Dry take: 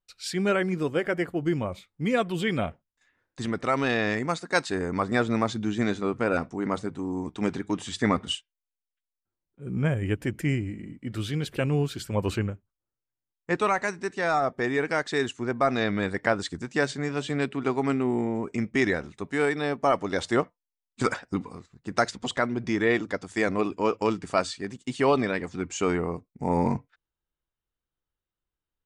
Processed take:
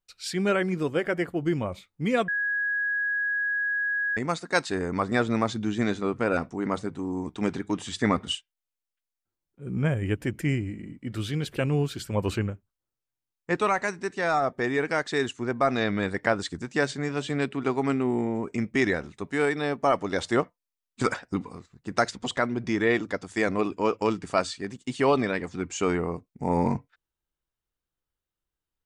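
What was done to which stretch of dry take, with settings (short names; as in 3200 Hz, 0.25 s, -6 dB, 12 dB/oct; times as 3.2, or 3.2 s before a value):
2.28–4.17 bleep 1660 Hz -24 dBFS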